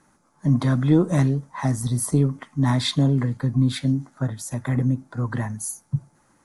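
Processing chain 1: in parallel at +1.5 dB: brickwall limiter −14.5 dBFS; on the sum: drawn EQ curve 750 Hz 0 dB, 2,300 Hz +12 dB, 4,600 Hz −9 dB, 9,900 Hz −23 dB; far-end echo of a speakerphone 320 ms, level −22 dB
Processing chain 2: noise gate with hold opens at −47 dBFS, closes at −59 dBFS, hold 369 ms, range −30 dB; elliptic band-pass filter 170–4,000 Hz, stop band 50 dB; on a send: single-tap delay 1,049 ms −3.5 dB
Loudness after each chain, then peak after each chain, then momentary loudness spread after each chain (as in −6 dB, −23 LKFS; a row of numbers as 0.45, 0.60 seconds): −17.0, −25.0 LKFS; −3.0, −9.0 dBFS; 9, 10 LU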